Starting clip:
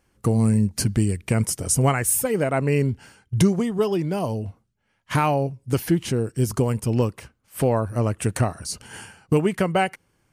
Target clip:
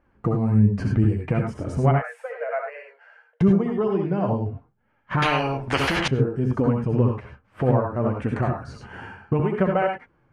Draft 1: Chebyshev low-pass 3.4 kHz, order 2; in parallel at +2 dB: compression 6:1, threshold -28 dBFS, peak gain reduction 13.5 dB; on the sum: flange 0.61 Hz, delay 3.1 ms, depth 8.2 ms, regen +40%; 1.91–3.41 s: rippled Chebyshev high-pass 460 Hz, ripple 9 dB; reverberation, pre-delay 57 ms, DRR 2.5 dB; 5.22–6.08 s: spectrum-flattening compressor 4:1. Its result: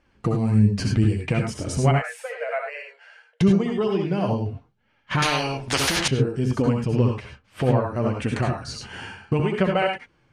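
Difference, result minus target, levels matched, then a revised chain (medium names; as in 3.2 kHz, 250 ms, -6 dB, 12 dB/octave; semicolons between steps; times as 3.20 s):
4 kHz band +5.0 dB
Chebyshev low-pass 1.4 kHz, order 2; in parallel at +2 dB: compression 6:1, threshold -28 dBFS, peak gain reduction 13.5 dB; on the sum: flange 0.61 Hz, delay 3.1 ms, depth 8.2 ms, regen +40%; 1.91–3.41 s: rippled Chebyshev high-pass 460 Hz, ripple 9 dB; reverberation, pre-delay 57 ms, DRR 2.5 dB; 5.22–6.08 s: spectrum-flattening compressor 4:1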